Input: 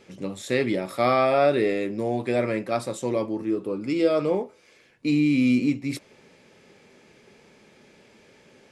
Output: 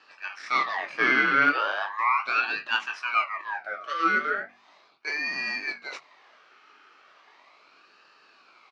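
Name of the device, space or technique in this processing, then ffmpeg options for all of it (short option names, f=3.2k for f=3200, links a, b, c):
voice changer toy: -filter_complex "[0:a]highpass=630,aeval=exprs='val(0)*sin(2*PI*1500*n/s+1500*0.45/0.37*sin(2*PI*0.37*n/s))':c=same,highpass=410,equalizer=f=500:t=q:w=4:g=-5,equalizer=f=1.2k:t=q:w=4:g=7,equalizer=f=2.3k:t=q:w=4:g=3,equalizer=f=3.5k:t=q:w=4:g=-9,lowpass=f=4.6k:w=0.5412,lowpass=f=4.6k:w=1.3066,bandreject=f=47.39:t=h:w=4,bandreject=f=94.78:t=h:w=4,bandreject=f=142.17:t=h:w=4,bandreject=f=189.56:t=h:w=4,bandreject=f=236.95:t=h:w=4,asettb=1/sr,asplit=3[a][b][c];[a]atrim=end=1.784[d];[b]atrim=start=1.78:end=2.34,asetpts=PTS-STARTPTS,afade=t=in:d=0.004:c=qsin,afade=t=out:st=0.556:d=0.004:c=qsin,equalizer=f=1.1k:t=o:w=0.31:g=9[e];[c]atrim=start=2.336[f];[d][e]acrossfade=d=0.004:c1=hsin:c2=qsin[g];[g][f]acrossfade=d=0.004:c1=qsin:c2=hsin,asplit=2[h][i];[i]adelay=21,volume=-9dB[j];[h][j]amix=inputs=2:normalize=0,volume=4.5dB"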